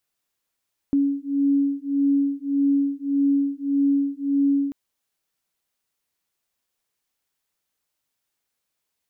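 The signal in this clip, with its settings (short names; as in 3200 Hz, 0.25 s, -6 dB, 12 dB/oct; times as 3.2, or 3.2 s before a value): beating tones 279 Hz, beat 1.7 Hz, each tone -21.5 dBFS 3.79 s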